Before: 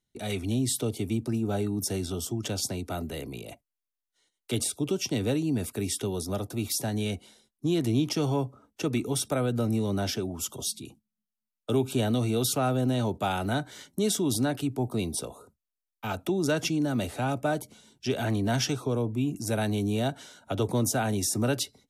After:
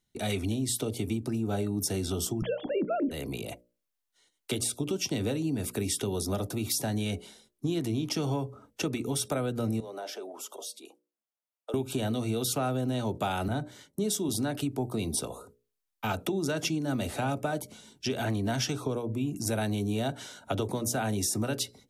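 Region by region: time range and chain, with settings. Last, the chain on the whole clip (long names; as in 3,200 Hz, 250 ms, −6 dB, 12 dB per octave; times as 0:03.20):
0:02.42–0:03.11: three sine waves on the formant tracks + spectral tilt −4 dB per octave
0:09.80–0:11.74: high-pass filter 510 Hz 24 dB per octave + tilt shelving filter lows +8.5 dB, about 770 Hz + downward compressor 2 to 1, threshold −43 dBFS
0:13.48–0:14.29: dynamic equaliser 1,700 Hz, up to −5 dB, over −46 dBFS, Q 0.72 + multiband upward and downward expander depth 70%
whole clip: downward compressor, threshold −30 dBFS; mains-hum notches 60/120/180/240/300/360/420/480/540/600 Hz; level +4 dB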